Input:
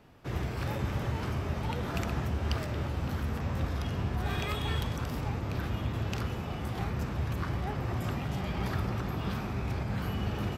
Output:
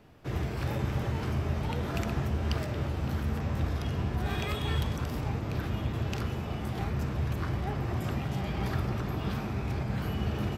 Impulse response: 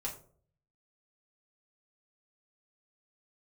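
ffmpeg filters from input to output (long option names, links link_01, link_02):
-filter_complex "[0:a]asplit=2[link_01][link_02];[link_02]lowpass=frequency=1200:width=0.5412,lowpass=frequency=1200:width=1.3066[link_03];[1:a]atrim=start_sample=2205[link_04];[link_03][link_04]afir=irnorm=-1:irlink=0,volume=-9.5dB[link_05];[link_01][link_05]amix=inputs=2:normalize=0"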